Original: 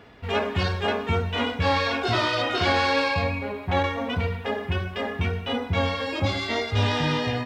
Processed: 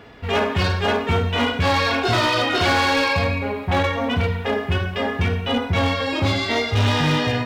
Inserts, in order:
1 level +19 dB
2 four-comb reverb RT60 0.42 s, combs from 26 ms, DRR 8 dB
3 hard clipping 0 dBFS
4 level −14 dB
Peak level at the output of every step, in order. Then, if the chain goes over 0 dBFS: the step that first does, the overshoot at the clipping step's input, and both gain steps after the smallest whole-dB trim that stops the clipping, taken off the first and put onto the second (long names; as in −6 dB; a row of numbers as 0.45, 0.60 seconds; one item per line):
+8.0, +9.0, 0.0, −14.0 dBFS
step 1, 9.0 dB
step 1 +10 dB, step 4 −5 dB